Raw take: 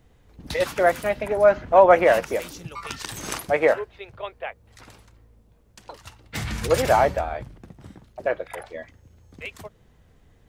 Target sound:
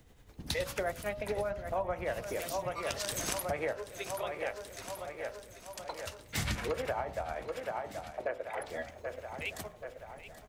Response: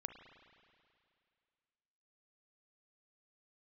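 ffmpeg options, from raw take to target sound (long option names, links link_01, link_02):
-filter_complex "[0:a]asettb=1/sr,asplit=3[link_01][link_02][link_03];[link_01]atrim=end=6.554[link_04];[link_02]atrim=start=6.55:end=8.61,asetpts=PTS-STARTPTS,afade=type=in:duration=0.004:curve=qsin,afade=type=out:start_time=2.056:duration=0.004:curve=qsin,acrossover=split=240 3000:gain=0.224 1 0.2[link_05][link_06][link_07];[link_05][link_06][link_07]amix=inputs=3:normalize=0[link_08];[link_03]atrim=start=8.606[link_09];[link_04][link_08]acrossfade=duration=0.004:curve1=hsin:curve2=qsin[link_10];[link_10][link_09]acrossfade=duration=0.004:curve1=qsin:curve2=hsin,tremolo=f=10:d=0.53,highshelf=frequency=3900:gain=6.5,aecho=1:1:780|1560|2340|3120|3900|4680:0.188|0.109|0.0634|0.0368|0.0213|0.0124,acrossover=split=130[link_11][link_12];[link_12]acompressor=threshold=-31dB:ratio=10[link_13];[link_11][link_13]amix=inputs=2:normalize=0,bandreject=frequency=55.98:width_type=h:width=4,bandreject=frequency=111.96:width_type=h:width=4,bandreject=frequency=167.94:width_type=h:width=4,bandreject=frequency=223.92:width_type=h:width=4,bandreject=frequency=279.9:width_type=h:width=4,bandreject=frequency=335.88:width_type=h:width=4,bandreject=frequency=391.86:width_type=h:width=4,bandreject=frequency=447.84:width_type=h:width=4,bandreject=frequency=503.82:width_type=h:width=4,bandreject=frequency=559.8:width_type=h:width=4,bandreject=frequency=615.78:width_type=h:width=4,bandreject=frequency=671.76:width_type=h:width=4,bandreject=frequency=727.74:width_type=h:width=4,bandreject=frequency=783.72:width_type=h:width=4,bandreject=frequency=839.7:width_type=h:width=4,bandreject=frequency=895.68:width_type=h:width=4,bandreject=frequency=951.66:width_type=h:width=4,bandreject=frequency=1007.64:width_type=h:width=4,bandreject=frequency=1063.62:width_type=h:width=4,bandreject=frequency=1119.6:width_type=h:width=4,bandreject=frequency=1175.58:width_type=h:width=4,bandreject=frequency=1231.56:width_type=h:width=4,bandreject=frequency=1287.54:width_type=h:width=4,bandreject=frequency=1343.52:width_type=h:width=4,bandreject=frequency=1399.5:width_type=h:width=4"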